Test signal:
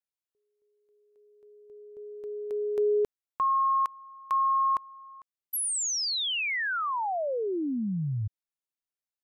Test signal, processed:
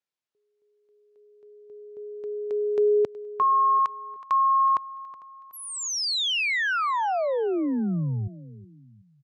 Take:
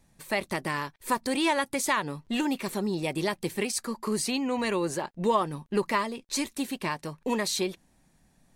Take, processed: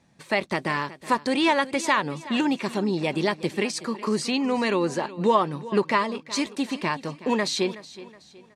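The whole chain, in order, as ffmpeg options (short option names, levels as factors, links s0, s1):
-af "highpass=110,lowpass=5500,aecho=1:1:371|742|1113:0.141|0.0551|0.0215,volume=1.68"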